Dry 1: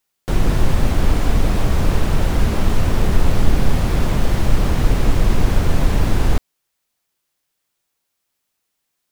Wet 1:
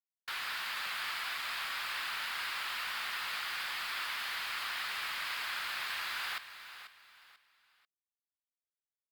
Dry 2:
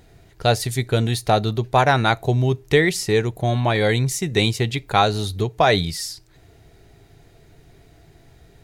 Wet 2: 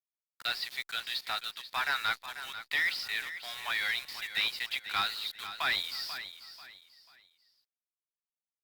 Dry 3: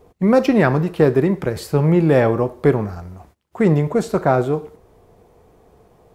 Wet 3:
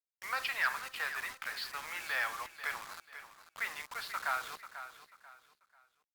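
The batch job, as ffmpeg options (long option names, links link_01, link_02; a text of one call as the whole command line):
ffmpeg -i in.wav -af "highpass=frequency=1300:width=0.5412,highpass=frequency=1300:width=1.3066,aresample=11025,asoftclip=type=tanh:threshold=-19dB,aresample=44100,acrusher=bits=6:mix=0:aa=0.000001,aecho=1:1:490|980|1470:0.251|0.0779|0.0241,volume=-3.5dB" -ar 48000 -c:a libopus -b:a 64k out.opus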